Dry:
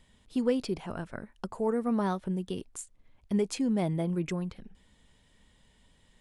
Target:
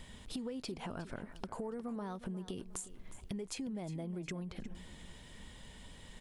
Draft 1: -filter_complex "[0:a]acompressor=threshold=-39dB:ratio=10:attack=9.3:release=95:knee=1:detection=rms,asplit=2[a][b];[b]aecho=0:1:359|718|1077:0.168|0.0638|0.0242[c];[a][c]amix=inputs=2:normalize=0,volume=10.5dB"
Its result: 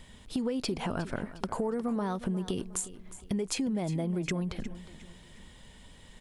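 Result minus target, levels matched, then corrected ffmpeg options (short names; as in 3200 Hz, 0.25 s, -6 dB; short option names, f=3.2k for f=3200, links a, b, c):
compressor: peak gain reduction -10 dB
-filter_complex "[0:a]acompressor=threshold=-50dB:ratio=10:attack=9.3:release=95:knee=1:detection=rms,asplit=2[a][b];[b]aecho=0:1:359|718|1077:0.168|0.0638|0.0242[c];[a][c]amix=inputs=2:normalize=0,volume=10.5dB"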